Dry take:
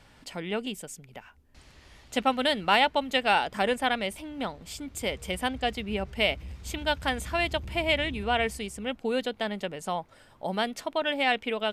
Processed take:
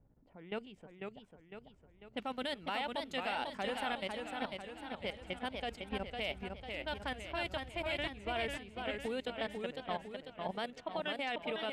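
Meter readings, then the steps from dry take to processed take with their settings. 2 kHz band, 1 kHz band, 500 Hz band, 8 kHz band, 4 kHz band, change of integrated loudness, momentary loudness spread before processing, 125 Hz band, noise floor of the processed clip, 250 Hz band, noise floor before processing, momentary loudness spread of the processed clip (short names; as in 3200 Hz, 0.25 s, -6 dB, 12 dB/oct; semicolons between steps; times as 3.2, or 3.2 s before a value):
-11.0 dB, -11.5 dB, -10.0 dB, -17.0 dB, -11.5 dB, -11.0 dB, 13 LU, -11.0 dB, -64 dBFS, -10.5 dB, -57 dBFS, 11 LU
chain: low-pass opened by the level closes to 380 Hz, open at -24.5 dBFS; level quantiser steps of 15 dB; warbling echo 0.5 s, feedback 51%, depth 147 cents, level -4.5 dB; gain -7 dB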